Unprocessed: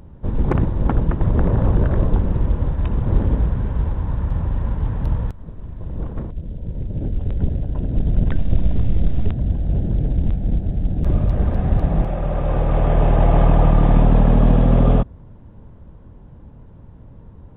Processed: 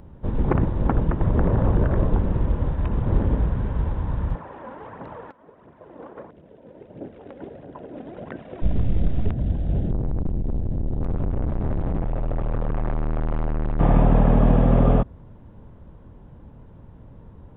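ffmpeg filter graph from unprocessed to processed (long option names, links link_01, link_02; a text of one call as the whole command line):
ffmpeg -i in.wav -filter_complex "[0:a]asettb=1/sr,asplit=3[link_01][link_02][link_03];[link_01]atrim=end=4.354[link_04];[link_02]atrim=start=4.35:end=8.62,asetpts=PTS-STARTPTS,afade=type=in:duration=0.004:curve=qsin,afade=type=out:start_time=4.266:duration=0.004:curve=qsin,aphaser=in_gain=1:out_gain=1:delay=4.1:decay=0.45:speed=1.5:type=triangular,highpass=410,lowpass=2100[link_05];[link_03]atrim=start=8.616[link_06];[link_04][link_05]acrossfade=duration=0.004:curve1=hsin:curve2=qsin[link_07];[link_07][link_06]acrossfade=duration=0.004:curve1=qsin:curve2=hsin,asettb=1/sr,asplit=3[link_08][link_09][link_10];[link_08]atrim=end=9.914[link_11];[link_09]atrim=start=9.91:end=13.8,asetpts=PTS-STARTPTS,afade=type=in:duration=0.004:curve=qsin,afade=type=out:start_time=3.886:duration=0.004:curve=qsin,lowshelf=frequency=160:gain=11,aeval=exprs='(tanh(8.91*val(0)+0.6)-tanh(0.6))/8.91':channel_layout=same[link_12];[link_10]atrim=start=13.796[link_13];[link_11][link_12]acrossfade=duration=0.004:curve1=hsin:curve2=qsin[link_14];[link_14][link_13]acrossfade=duration=0.004:curve1=qsin:curve2=hsin,acrossover=split=2700[link_15][link_16];[link_16]acompressor=threshold=-59dB:ratio=4:attack=1:release=60[link_17];[link_15][link_17]amix=inputs=2:normalize=0,lowshelf=frequency=190:gain=-4" out.wav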